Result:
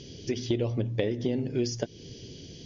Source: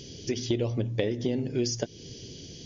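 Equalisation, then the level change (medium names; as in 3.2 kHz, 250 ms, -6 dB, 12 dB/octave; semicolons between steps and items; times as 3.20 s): distance through air 80 m; 0.0 dB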